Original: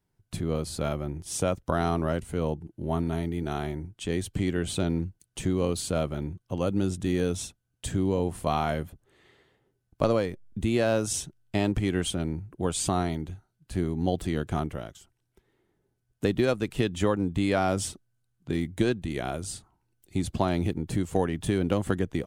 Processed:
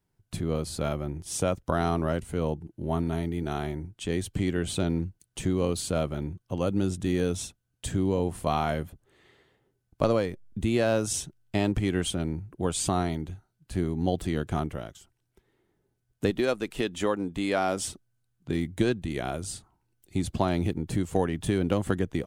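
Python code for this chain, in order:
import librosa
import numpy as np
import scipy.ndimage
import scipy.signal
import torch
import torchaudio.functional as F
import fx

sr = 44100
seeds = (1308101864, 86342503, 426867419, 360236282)

y = fx.peak_eq(x, sr, hz=100.0, db=-12.5, octaves=1.6, at=(16.3, 17.88))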